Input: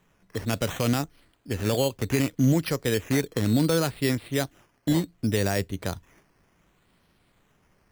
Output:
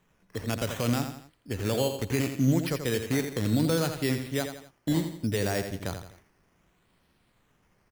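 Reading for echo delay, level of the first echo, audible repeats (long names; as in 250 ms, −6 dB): 84 ms, −8.0 dB, 3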